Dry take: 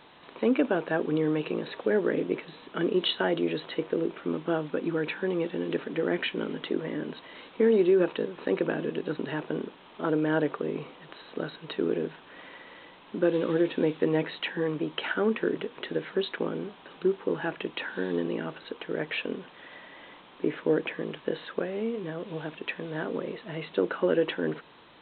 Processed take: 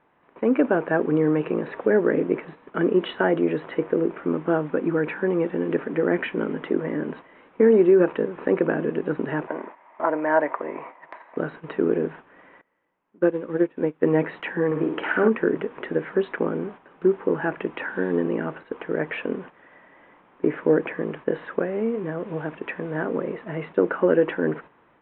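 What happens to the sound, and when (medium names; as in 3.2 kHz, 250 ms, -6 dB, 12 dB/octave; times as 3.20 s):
9.47–11.37 s: cabinet simulation 430–3500 Hz, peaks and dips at 440 Hz -8 dB, 640 Hz +7 dB, 970 Hz +9 dB, 1.4 kHz -3 dB, 2 kHz +8 dB, 3 kHz -5 dB
12.61–14.03 s: upward expansion 2.5:1, over -34 dBFS
14.66–15.28 s: flutter echo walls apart 9.1 m, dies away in 0.59 s
whole clip: low-pass 2.1 kHz 24 dB/octave; gate -45 dBFS, range -9 dB; level rider gain up to 6 dB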